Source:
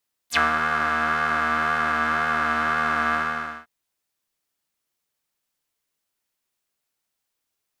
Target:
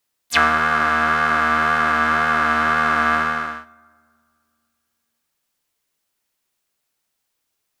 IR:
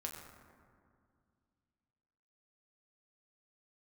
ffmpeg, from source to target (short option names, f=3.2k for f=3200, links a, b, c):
-filter_complex "[0:a]asplit=2[a][b];[1:a]atrim=start_sample=2205,adelay=101[c];[b][c]afir=irnorm=-1:irlink=0,volume=-20dB[d];[a][d]amix=inputs=2:normalize=0,volume=5dB"